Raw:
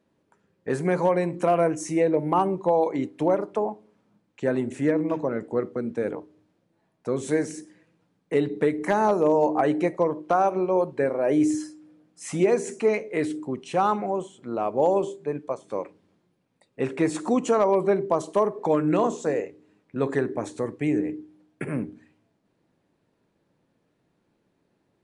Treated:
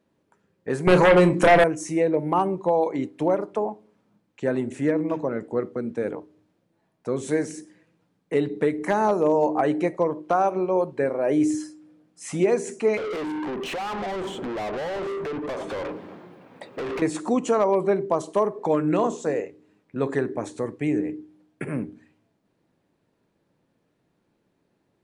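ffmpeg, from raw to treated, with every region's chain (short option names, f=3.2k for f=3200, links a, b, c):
-filter_complex "[0:a]asettb=1/sr,asplit=3[a][b][c];[a]atrim=end=0.874[d];[b]atrim=start=0.87:end=1.64,asetpts=PTS-STARTPTS,afade=t=in:d=0.004:c=qsin,afade=t=out:st=0.766:d=0.004:c=qsin,aeval=exprs='0.282*sin(PI/2*2.24*val(0)/0.282)':c=same,asplit=2[e][f];[f]adelay=33,volume=-10.5dB[g];[e][g]amix=inputs=2:normalize=0,atrim=end_sample=33957[h];[c]atrim=start=1.636[i];[d][h]acrossfade=d=0.004:c1=hsin:c2=qsin[j];[j][i]acrossfade=d=0.004:c1=qsin:c2=hsin,asettb=1/sr,asplit=3[k][l][m];[k]atrim=end=12.974[n];[l]atrim=start=12.97:end=17.02,asetpts=PTS-STARTPTS,afade=t=in:d=0.004:c=qsin,afade=t=out:st=4.046:d=0.004:c=qsin,equalizer=f=7.3k:t=o:w=2.8:g=-15,acompressor=threshold=-38dB:ratio=12:attack=3.2:release=140:knee=1:detection=peak,asplit=2[o][p];[p]highpass=f=720:p=1,volume=39dB,asoftclip=type=tanh:threshold=-22.5dB[q];[o][q]amix=inputs=2:normalize=0,lowpass=f=3k:p=1,volume=-6dB[r];[m]atrim=start=17.016[s];[n][r]acrossfade=d=0.004:c1=hsin:c2=qsin[t];[t][s]acrossfade=d=0.004:c1=qsin:c2=hsin"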